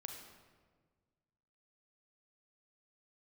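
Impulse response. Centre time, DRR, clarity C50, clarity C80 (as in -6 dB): 45 ms, 2.5 dB, 4.0 dB, 6.0 dB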